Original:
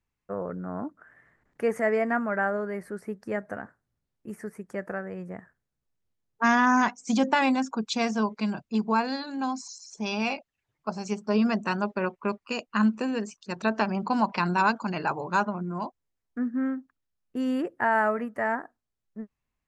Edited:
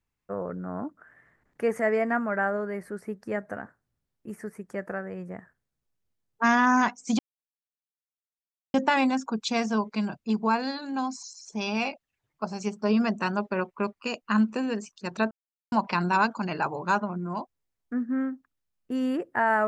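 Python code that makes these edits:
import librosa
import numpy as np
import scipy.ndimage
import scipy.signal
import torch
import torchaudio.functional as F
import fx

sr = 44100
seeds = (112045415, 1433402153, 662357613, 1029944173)

y = fx.edit(x, sr, fx.insert_silence(at_s=7.19, length_s=1.55),
    fx.silence(start_s=13.76, length_s=0.41), tone=tone)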